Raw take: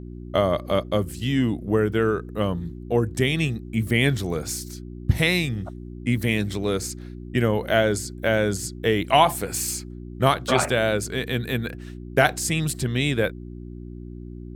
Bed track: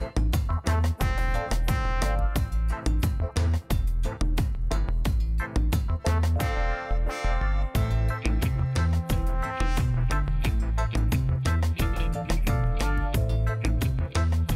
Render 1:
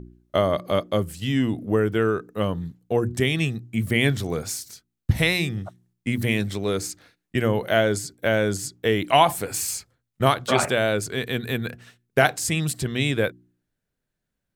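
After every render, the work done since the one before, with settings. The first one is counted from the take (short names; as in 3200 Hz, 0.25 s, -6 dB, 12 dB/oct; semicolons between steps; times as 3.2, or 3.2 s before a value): de-hum 60 Hz, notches 6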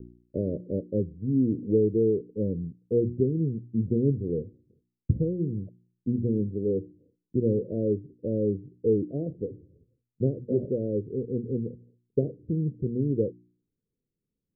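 steep low-pass 500 Hz 72 dB/oct; low shelf 84 Hz -9.5 dB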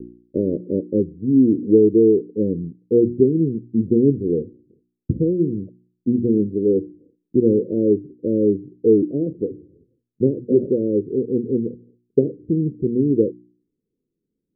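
EQ curve 110 Hz 0 dB, 340 Hz +13 dB, 510 Hz +6 dB, 1200 Hz -19 dB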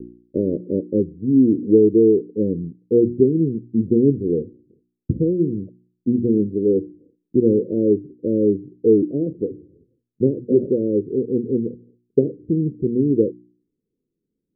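nothing audible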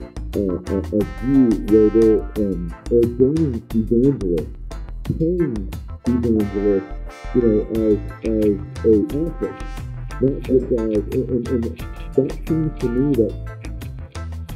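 add bed track -5.5 dB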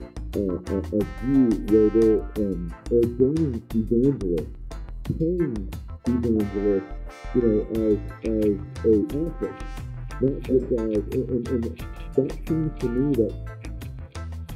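gain -4.5 dB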